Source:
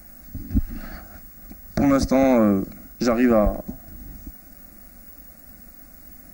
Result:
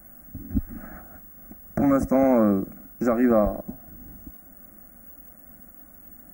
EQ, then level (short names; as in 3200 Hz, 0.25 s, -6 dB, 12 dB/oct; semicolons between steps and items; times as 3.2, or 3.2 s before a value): Butterworth band-stop 3900 Hz, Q 0.58; low shelf 66 Hz -9 dB; -1.5 dB